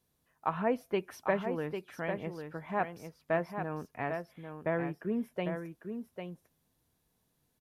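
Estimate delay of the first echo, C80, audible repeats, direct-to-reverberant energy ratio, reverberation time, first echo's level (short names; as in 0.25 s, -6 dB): 0.799 s, none, 1, none, none, -7.0 dB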